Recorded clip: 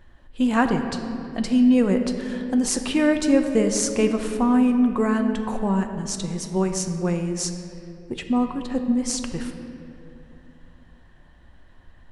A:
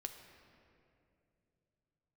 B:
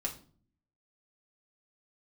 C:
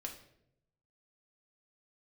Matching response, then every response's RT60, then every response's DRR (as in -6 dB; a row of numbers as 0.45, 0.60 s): A; 2.6, 0.45, 0.75 s; 5.0, -0.5, 0.0 dB